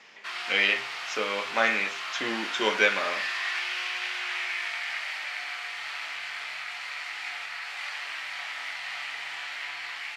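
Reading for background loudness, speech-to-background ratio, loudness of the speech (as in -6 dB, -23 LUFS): -32.5 LUFS, 6.0 dB, -26.5 LUFS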